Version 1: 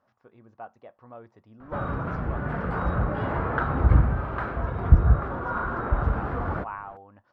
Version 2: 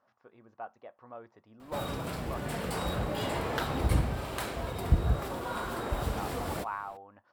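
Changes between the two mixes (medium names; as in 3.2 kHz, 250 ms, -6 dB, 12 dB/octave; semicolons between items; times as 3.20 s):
background: remove resonant low-pass 1.4 kHz, resonance Q 3.1; master: add bass shelf 210 Hz -10.5 dB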